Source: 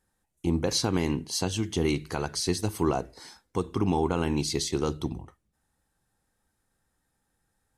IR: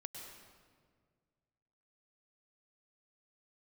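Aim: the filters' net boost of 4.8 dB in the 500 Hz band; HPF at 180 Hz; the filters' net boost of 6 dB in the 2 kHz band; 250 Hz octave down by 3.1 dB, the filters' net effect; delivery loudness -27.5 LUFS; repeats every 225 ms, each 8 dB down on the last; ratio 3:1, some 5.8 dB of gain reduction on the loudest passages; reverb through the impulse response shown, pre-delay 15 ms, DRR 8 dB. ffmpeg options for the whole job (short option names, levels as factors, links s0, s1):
-filter_complex "[0:a]highpass=180,equalizer=f=250:t=o:g=-7.5,equalizer=f=500:t=o:g=9,equalizer=f=2000:t=o:g=7.5,acompressor=threshold=0.0501:ratio=3,aecho=1:1:225|450|675|900|1125:0.398|0.159|0.0637|0.0255|0.0102,asplit=2[s0][s1];[1:a]atrim=start_sample=2205,adelay=15[s2];[s1][s2]afir=irnorm=-1:irlink=0,volume=0.562[s3];[s0][s3]amix=inputs=2:normalize=0,volume=1.33"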